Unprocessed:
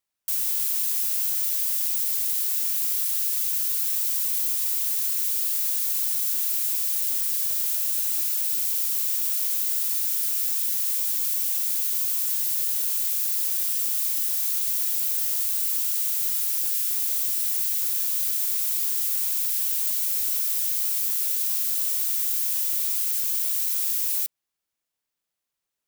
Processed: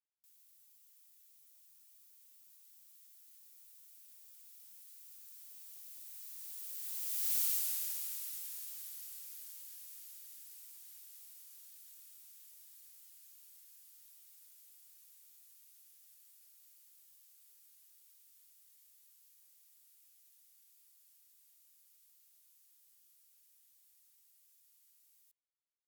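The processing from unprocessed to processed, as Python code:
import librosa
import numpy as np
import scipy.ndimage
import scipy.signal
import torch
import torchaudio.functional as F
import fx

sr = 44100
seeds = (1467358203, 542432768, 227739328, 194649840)

y = fx.doppler_pass(x, sr, speed_mps=52, closest_m=12.0, pass_at_s=7.38)
y = y * librosa.db_to_amplitude(-6.5)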